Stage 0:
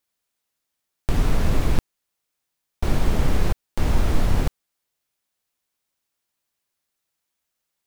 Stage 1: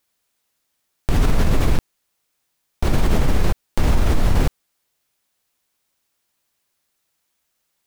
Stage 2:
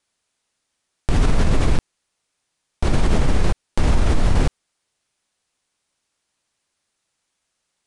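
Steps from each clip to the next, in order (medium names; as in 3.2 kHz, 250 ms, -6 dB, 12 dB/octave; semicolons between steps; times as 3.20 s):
in parallel at 0 dB: compressor with a negative ratio -19 dBFS, ratio -1; on the sum: peak limiter -7.5 dBFS, peak gain reduction 4.5 dB
resampled via 22.05 kHz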